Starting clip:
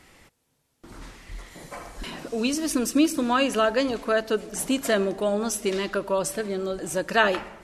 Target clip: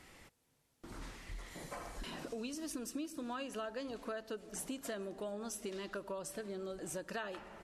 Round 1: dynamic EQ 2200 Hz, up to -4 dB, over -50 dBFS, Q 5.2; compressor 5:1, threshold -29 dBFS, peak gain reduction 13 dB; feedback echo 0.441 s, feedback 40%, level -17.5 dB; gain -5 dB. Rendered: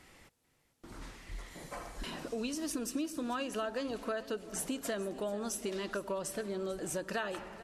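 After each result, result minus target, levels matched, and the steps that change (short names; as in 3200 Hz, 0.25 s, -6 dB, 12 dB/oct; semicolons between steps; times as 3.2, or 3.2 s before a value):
echo-to-direct +11.5 dB; compressor: peak gain reduction -5.5 dB
change: feedback echo 0.441 s, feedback 40%, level -29 dB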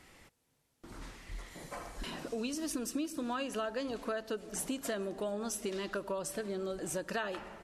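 compressor: peak gain reduction -5.5 dB
change: compressor 5:1, threshold -36 dBFS, peak gain reduction 18.5 dB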